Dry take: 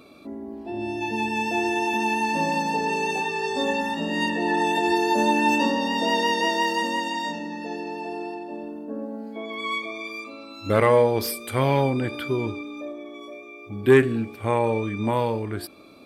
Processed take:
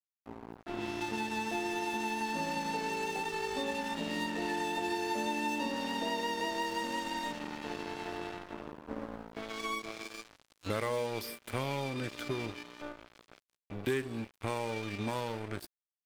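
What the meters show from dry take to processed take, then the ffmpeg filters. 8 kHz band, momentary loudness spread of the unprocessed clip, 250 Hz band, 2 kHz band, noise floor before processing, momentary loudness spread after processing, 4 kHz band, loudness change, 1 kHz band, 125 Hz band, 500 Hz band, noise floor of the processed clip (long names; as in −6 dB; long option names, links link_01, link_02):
−7.5 dB, 16 LU, −12.0 dB, −11.0 dB, −43 dBFS, 12 LU, −9.5 dB, −12.0 dB, −11.5 dB, −13.0 dB, −13.5 dB, below −85 dBFS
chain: -filter_complex "[0:a]aeval=exprs='sgn(val(0))*max(abs(val(0))-0.0211,0)':channel_layout=same,acrossover=split=1500|3200[link_01][link_02][link_03];[link_01]acompressor=threshold=-34dB:ratio=4[link_04];[link_02]acompressor=threshold=-46dB:ratio=4[link_05];[link_03]acompressor=threshold=-46dB:ratio=4[link_06];[link_04][link_05][link_06]amix=inputs=3:normalize=0"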